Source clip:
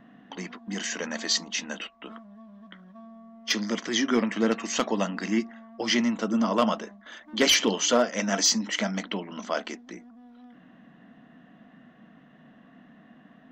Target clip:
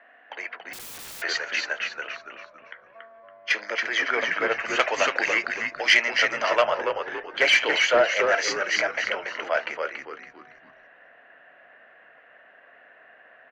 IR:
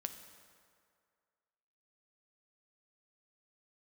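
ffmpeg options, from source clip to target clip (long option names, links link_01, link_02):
-filter_complex "[0:a]highpass=frequency=450:width=0.5412,highpass=frequency=450:width=1.3066,equalizer=frequency=600:width_type=q:width=4:gain=4,equalizer=frequency=1100:width_type=q:width=4:gain=-5,equalizer=frequency=1600:width_type=q:width=4:gain=7,equalizer=frequency=2300:width_type=q:width=4:gain=8,equalizer=frequency=3600:width_type=q:width=4:gain=-9,equalizer=frequency=5400:width_type=q:width=4:gain=-8,lowpass=frequency=5800:width=0.5412,lowpass=frequency=5800:width=1.3066,asplit=5[link_01][link_02][link_03][link_04][link_05];[link_02]adelay=281,afreqshift=-98,volume=-5dB[link_06];[link_03]adelay=562,afreqshift=-196,volume=-14.1dB[link_07];[link_04]adelay=843,afreqshift=-294,volume=-23.2dB[link_08];[link_05]adelay=1124,afreqshift=-392,volume=-32.4dB[link_09];[link_01][link_06][link_07][link_08][link_09]amix=inputs=5:normalize=0,asplit=2[link_10][link_11];[link_11]highpass=frequency=720:poles=1,volume=9dB,asoftclip=type=tanh:threshold=-6.5dB[link_12];[link_10][link_12]amix=inputs=2:normalize=0,lowpass=frequency=3100:poles=1,volume=-6dB,asettb=1/sr,asplit=3[link_13][link_14][link_15];[link_13]atrim=end=0.734[link_16];[link_14]atrim=start=0.73:end=1.22,asetpts=PTS-STARTPTS,afade=type=in:duration=0.004:curve=qsin,afade=type=out:start_time=0.486:duration=0.004:curve=qsin,aeval=exprs='(mod(56.2*val(0)+1,2)-1)/56.2':channel_layout=same[link_17];[link_15]atrim=start=1.216[link_18];[link_16][link_17]acrossfade=duration=0.004:curve1=hsin:curve2=qsin[link_19];[link_19][link_18]acrossfade=duration=0.004:curve1=qsin:curve2=hsin,asettb=1/sr,asplit=3[link_20][link_21][link_22];[link_20]atrim=end=4.794[link_23];[link_21]atrim=start=4.79:end=6.62,asetpts=PTS-STARTPTS,afade=type=in:duration=0.004:curve=qsin,afade=type=out:start_time=1.826:duration=0.004:curve=qsin,highshelf=frequency=2500:gain=11.5[link_24];[link_22]atrim=start=6.616[link_25];[link_23][link_24]acrossfade=duration=0.004:curve1=hsin:curve2=qsin[link_26];[link_26][link_25]acrossfade=duration=0.004:curve1=qsin:curve2=hsin"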